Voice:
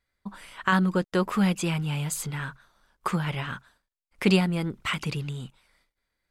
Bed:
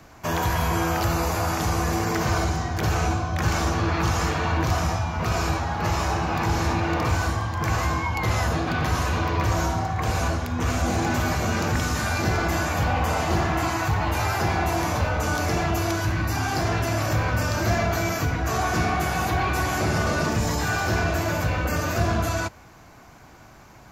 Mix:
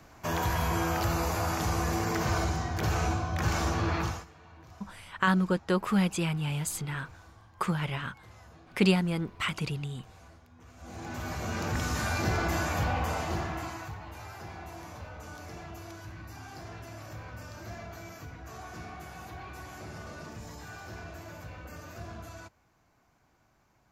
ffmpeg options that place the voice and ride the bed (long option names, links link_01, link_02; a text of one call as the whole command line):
ffmpeg -i stem1.wav -i stem2.wav -filter_complex "[0:a]adelay=4550,volume=-2.5dB[link_01];[1:a]volume=18.5dB,afade=type=out:start_time=3.96:duration=0.29:silence=0.0630957,afade=type=in:start_time=10.76:duration=1.25:silence=0.0630957,afade=type=out:start_time=12.76:duration=1.25:silence=0.188365[link_02];[link_01][link_02]amix=inputs=2:normalize=0" out.wav